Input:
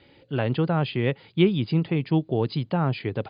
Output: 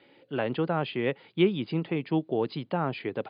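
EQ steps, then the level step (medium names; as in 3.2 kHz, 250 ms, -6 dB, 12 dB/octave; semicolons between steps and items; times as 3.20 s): band-pass 230–3500 Hz; -1.5 dB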